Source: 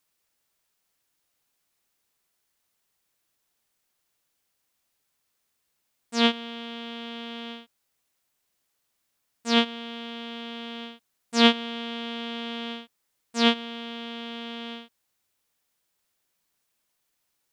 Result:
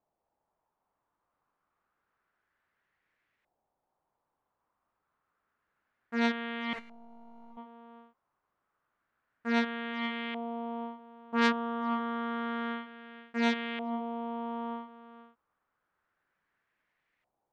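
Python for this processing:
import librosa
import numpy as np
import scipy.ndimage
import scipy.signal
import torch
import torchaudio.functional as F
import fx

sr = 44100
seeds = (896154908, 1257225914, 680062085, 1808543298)

y = x + 10.0 ** (-15.5 / 20.0) * np.pad(x, (int(471 * sr / 1000.0), 0))[:len(x)]
y = fx.overflow_wrap(y, sr, gain_db=35.5, at=(6.73, 7.57))
y = fx.filter_lfo_lowpass(y, sr, shape='saw_up', hz=0.29, low_hz=740.0, high_hz=2100.0, q=2.8)
y = fx.transformer_sat(y, sr, knee_hz=3000.0)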